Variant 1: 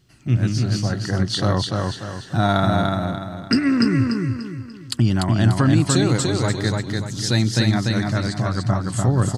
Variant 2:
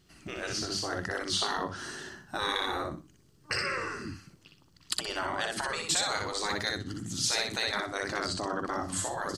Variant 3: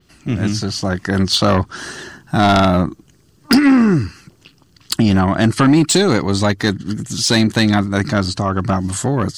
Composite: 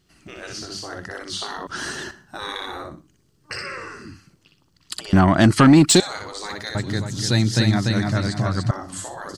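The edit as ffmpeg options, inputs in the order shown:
-filter_complex "[2:a]asplit=2[a][b];[1:a]asplit=4[c][d][e][f];[c]atrim=end=1.672[g];[a]atrim=start=1.668:end=2.112[h];[d]atrim=start=2.108:end=5.132[i];[b]atrim=start=5.128:end=6.002[j];[e]atrim=start=5.998:end=6.752[k];[0:a]atrim=start=6.748:end=8.712[l];[f]atrim=start=8.708[m];[g][h]acrossfade=d=0.004:c1=hsin:c2=hsin[n];[n][i]acrossfade=d=0.004:c1=hsin:c2=hsin[o];[o][j]acrossfade=d=0.004:c1=hsin:c2=hsin[p];[p][k]acrossfade=d=0.004:c1=hsin:c2=hsin[q];[q][l]acrossfade=d=0.004:c1=hsin:c2=hsin[r];[r][m]acrossfade=d=0.004:c1=hsin:c2=hsin"

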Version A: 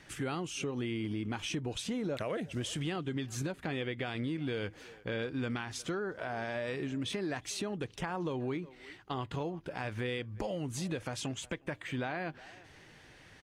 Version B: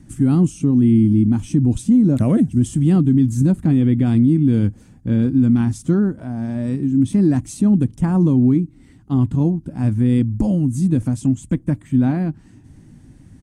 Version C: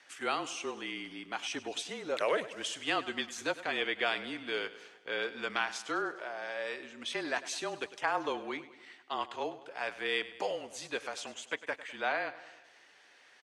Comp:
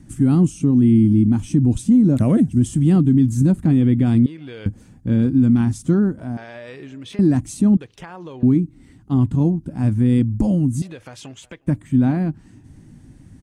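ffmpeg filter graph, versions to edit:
-filter_complex "[0:a]asplit=4[a][b][c][d];[1:a]asplit=5[e][f][g][h][i];[e]atrim=end=4.262[j];[a]atrim=start=4.258:end=4.662[k];[f]atrim=start=4.658:end=6.372[l];[b]atrim=start=6.368:end=7.192[m];[g]atrim=start=7.188:end=7.772[n];[c]atrim=start=7.768:end=8.432[o];[h]atrim=start=8.428:end=10.822[p];[d]atrim=start=10.818:end=11.672[q];[i]atrim=start=11.668[r];[j][k]acrossfade=d=0.004:c1=hsin:c2=hsin[s];[s][l]acrossfade=d=0.004:c1=hsin:c2=hsin[t];[t][m]acrossfade=d=0.004:c1=hsin:c2=hsin[u];[u][n]acrossfade=d=0.004:c1=hsin:c2=hsin[v];[v][o]acrossfade=d=0.004:c1=hsin:c2=hsin[w];[w][p]acrossfade=d=0.004:c1=hsin:c2=hsin[x];[x][q]acrossfade=d=0.004:c1=hsin:c2=hsin[y];[y][r]acrossfade=d=0.004:c1=hsin:c2=hsin"

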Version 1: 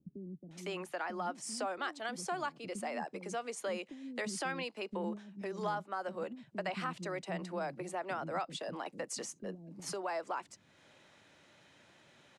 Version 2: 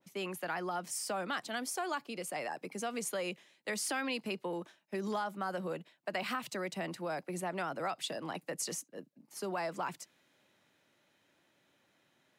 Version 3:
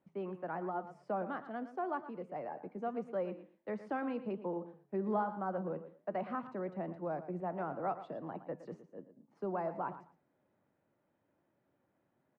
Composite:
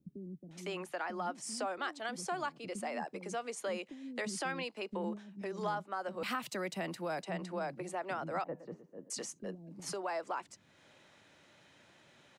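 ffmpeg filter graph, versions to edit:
-filter_complex "[0:a]asplit=3[a][b][c];[a]atrim=end=6.232[d];[1:a]atrim=start=6.228:end=7.232[e];[b]atrim=start=7.228:end=8.442[f];[2:a]atrim=start=8.438:end=9.102[g];[c]atrim=start=9.098[h];[d][e]acrossfade=d=0.004:c1=hsin:c2=hsin[i];[i][f]acrossfade=d=0.004:c1=hsin:c2=hsin[j];[j][g]acrossfade=d=0.004:c1=hsin:c2=hsin[k];[k][h]acrossfade=d=0.004:c1=hsin:c2=hsin"

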